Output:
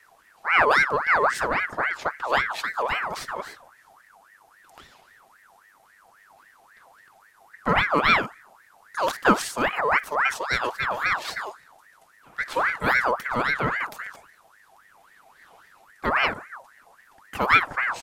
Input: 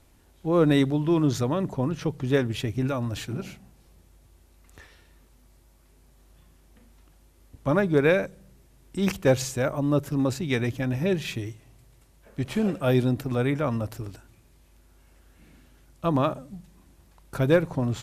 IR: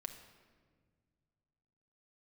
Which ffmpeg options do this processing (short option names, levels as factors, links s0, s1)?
-filter_complex "[0:a]aecho=1:1:3.6:0.38,asplit=2[s0][s1];[1:a]atrim=start_sample=2205,atrim=end_sample=3969[s2];[s1][s2]afir=irnorm=-1:irlink=0,volume=0.668[s3];[s0][s3]amix=inputs=2:normalize=0,aeval=exprs='val(0)*sin(2*PI*1300*n/s+1300*0.45/3.7*sin(2*PI*3.7*n/s))':c=same"